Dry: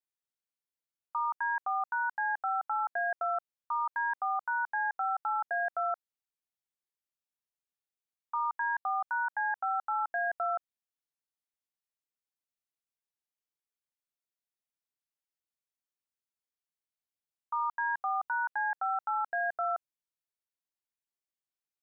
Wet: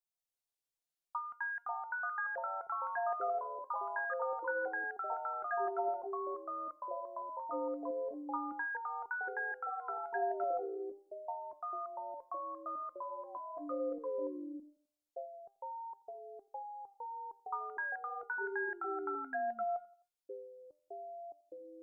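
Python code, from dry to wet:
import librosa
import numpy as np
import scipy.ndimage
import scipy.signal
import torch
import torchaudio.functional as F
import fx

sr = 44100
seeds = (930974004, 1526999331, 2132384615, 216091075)

p1 = fx.comb_fb(x, sr, f0_hz=710.0, decay_s=0.24, harmonics='all', damping=0.0, mix_pct=80)
p2 = fx.spec_paint(p1, sr, seeds[0], shape='fall', start_s=9.7, length_s=1.15, low_hz=390.0, high_hz=1200.0, level_db=-53.0)
p3 = fx.env_phaser(p2, sr, low_hz=320.0, high_hz=1500.0, full_db=-37.5)
p4 = fx.echo_pitch(p3, sr, ms=156, semitones=-5, count=3, db_per_echo=-3.0)
p5 = p4 + fx.echo_feedback(p4, sr, ms=86, feedback_pct=52, wet_db=-23, dry=0)
y = p5 * librosa.db_to_amplitude(10.0)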